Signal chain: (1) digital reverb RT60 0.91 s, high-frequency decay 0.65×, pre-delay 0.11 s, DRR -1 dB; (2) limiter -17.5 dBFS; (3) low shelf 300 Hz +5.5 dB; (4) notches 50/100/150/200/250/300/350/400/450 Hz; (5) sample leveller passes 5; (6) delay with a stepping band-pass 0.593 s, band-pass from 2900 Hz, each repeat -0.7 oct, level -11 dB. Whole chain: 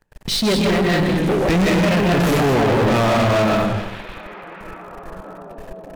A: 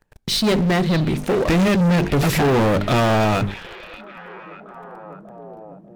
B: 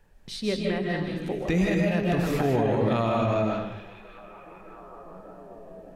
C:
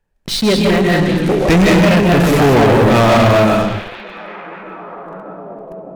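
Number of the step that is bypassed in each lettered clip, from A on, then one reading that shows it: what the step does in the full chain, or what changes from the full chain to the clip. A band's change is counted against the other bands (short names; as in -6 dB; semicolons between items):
1, 125 Hz band +2.0 dB; 5, crest factor change +7.0 dB; 2, mean gain reduction 1.5 dB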